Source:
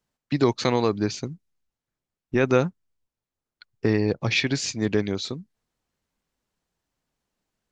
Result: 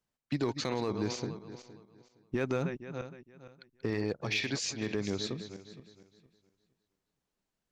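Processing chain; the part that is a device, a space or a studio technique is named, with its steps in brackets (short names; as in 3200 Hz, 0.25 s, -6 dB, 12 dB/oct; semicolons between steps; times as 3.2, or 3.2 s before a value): regenerating reverse delay 0.232 s, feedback 47%, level -12 dB; 3.9–4.95 low shelf 340 Hz -6 dB; limiter into clipper (limiter -15 dBFS, peak gain reduction 7.5 dB; hard clip -16.5 dBFS, distortion -28 dB); gain -6 dB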